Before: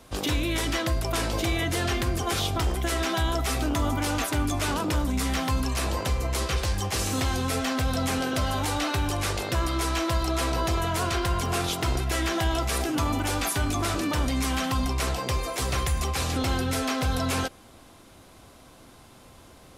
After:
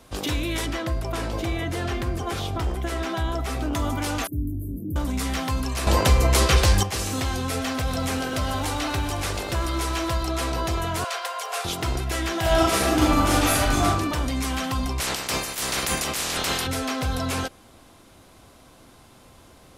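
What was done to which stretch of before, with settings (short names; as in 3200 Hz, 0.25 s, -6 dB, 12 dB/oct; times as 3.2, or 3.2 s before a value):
0.66–3.73 high shelf 2500 Hz -8 dB
4.27–4.96 inverse Chebyshev band-stop 1100–4900 Hz, stop band 70 dB
5.87–6.83 gain +9 dB
7.41–10.15 lo-fi delay 0.125 s, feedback 80%, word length 9-bit, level -14.5 dB
11.04–11.65 steep high-pass 460 Hz 72 dB/oct
12.4–13.83 reverb throw, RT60 0.98 s, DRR -6.5 dB
15–16.66 spectral limiter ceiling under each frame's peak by 26 dB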